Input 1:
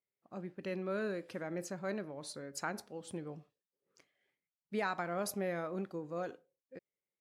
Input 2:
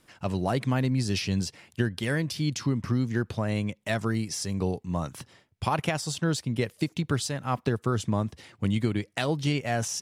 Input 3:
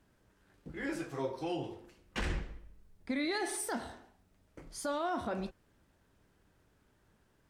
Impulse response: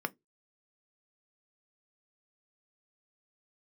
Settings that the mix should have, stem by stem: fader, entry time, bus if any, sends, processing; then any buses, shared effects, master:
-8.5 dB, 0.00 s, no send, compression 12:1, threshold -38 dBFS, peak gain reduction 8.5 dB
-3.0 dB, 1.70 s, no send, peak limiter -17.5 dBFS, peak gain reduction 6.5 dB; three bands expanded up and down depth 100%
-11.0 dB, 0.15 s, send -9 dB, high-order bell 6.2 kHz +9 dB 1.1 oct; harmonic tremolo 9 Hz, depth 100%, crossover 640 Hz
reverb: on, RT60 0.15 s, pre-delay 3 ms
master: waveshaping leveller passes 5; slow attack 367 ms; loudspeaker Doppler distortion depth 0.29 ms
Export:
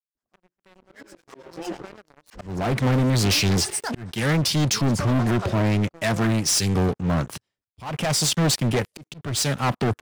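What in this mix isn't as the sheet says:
stem 1 -8.5 dB -> -15.0 dB; stem 2: entry 1.70 s -> 2.15 s

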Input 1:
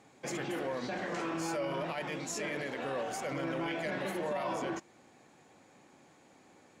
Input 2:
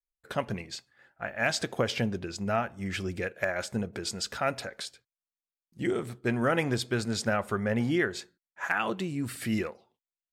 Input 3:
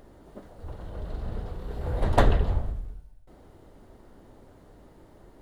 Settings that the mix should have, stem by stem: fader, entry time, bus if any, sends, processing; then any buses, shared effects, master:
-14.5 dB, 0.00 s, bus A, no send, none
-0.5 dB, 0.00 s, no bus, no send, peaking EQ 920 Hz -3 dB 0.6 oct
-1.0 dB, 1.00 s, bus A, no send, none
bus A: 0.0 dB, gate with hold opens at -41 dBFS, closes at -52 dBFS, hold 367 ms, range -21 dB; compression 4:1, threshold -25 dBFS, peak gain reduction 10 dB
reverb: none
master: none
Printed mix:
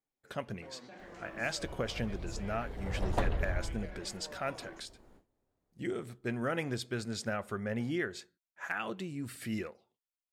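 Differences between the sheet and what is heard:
stem 2 -0.5 dB -> -7.0 dB; stem 3 -1.0 dB -> -8.0 dB

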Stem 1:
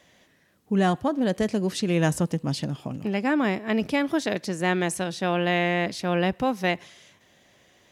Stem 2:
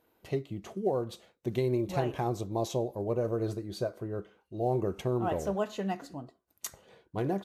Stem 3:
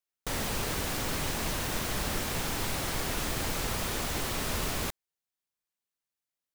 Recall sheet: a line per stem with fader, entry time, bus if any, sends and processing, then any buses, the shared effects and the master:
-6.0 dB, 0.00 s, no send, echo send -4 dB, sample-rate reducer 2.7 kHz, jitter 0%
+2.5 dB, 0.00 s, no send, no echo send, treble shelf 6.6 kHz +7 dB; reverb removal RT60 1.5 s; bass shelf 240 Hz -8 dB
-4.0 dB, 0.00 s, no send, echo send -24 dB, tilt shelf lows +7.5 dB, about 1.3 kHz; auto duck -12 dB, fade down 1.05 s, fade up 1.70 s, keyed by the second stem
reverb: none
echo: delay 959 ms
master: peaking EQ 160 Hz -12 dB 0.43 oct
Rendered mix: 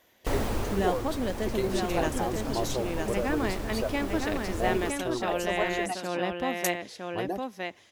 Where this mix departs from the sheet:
stem 1: missing sample-rate reducer 2.7 kHz, jitter 0%; stem 3 -4.0 dB -> +5.5 dB

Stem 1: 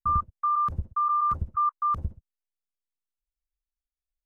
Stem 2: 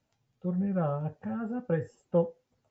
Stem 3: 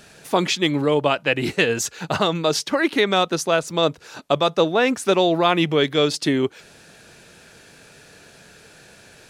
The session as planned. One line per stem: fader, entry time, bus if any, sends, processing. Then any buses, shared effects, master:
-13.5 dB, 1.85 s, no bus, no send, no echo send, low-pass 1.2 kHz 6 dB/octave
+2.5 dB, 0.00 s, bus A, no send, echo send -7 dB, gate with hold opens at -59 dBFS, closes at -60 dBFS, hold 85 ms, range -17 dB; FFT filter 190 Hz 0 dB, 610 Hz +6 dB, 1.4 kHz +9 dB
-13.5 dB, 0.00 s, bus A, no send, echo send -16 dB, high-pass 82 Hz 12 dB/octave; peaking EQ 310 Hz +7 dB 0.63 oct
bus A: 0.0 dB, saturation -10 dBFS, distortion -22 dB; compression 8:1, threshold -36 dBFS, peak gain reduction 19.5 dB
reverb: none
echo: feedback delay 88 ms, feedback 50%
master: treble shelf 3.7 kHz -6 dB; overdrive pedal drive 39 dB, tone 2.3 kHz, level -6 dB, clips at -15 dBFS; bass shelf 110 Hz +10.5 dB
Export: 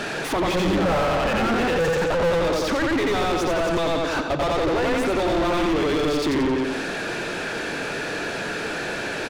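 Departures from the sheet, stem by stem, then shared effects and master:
stem 1: muted; stem 3 -13.5 dB -> -6.0 dB

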